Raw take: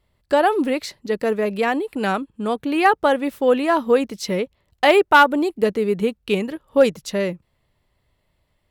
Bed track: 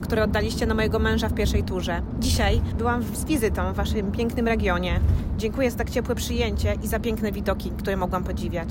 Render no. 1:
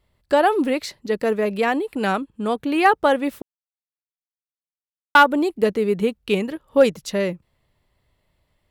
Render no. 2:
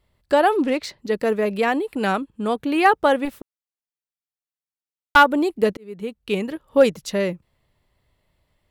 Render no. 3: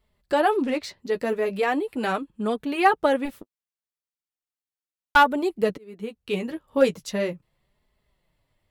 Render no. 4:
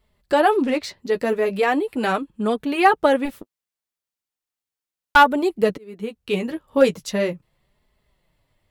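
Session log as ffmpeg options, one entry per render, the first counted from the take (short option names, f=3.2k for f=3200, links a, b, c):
-filter_complex "[0:a]asplit=3[a][b][c];[a]atrim=end=3.42,asetpts=PTS-STARTPTS,afade=t=out:st=3.416:d=0.004:c=hsin[d];[b]atrim=start=3.42:end=5.15,asetpts=PTS-STARTPTS,volume=0[e];[c]atrim=start=5.15,asetpts=PTS-STARTPTS,afade=t=in:d=0.004:c=hsin[f];[d][e][f]concat=n=3:v=0:a=1"
-filter_complex "[0:a]asplit=3[a][b][c];[a]afade=t=out:st=0.56:d=0.02[d];[b]adynamicsmooth=sensitivity=7:basefreq=5k,afade=t=in:st=0.56:d=0.02,afade=t=out:st=0.98:d=0.02[e];[c]afade=t=in:st=0.98:d=0.02[f];[d][e][f]amix=inputs=3:normalize=0,asettb=1/sr,asplit=3[g][h][i];[g]atrim=end=3.254[j];[h]atrim=start=3.25:end=5.16,asetpts=PTS-STARTPTS,afade=t=in:d=0.004:c=qsin,afade=t=out:st=1.906:d=0.004:c=qsin,aeval=exprs='(tanh(7.94*val(0)+0.65)-tanh(0.65))/7.94':c=same[k];[i]atrim=start=5.156[l];[j][k]acrossfade=d=0.004:c1=hsin:c2=qsin[m];[m][l]acrossfade=d=0.004:c1=qsin:c2=hsin,asplit=2[n][o];[n]atrim=end=5.77,asetpts=PTS-STARTPTS,afade=t=out:st=5.766:d=0.004:c=hsin[p];[o]atrim=start=5.77,asetpts=PTS-STARTPTS,afade=t=in:d=0.77[q];[p][q]concat=n=2:v=0:a=1"
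-af "flanger=delay=4.6:depth=7.6:regen=-22:speed=0.38:shape=sinusoidal"
-af "volume=4dB,alimiter=limit=-3dB:level=0:latency=1"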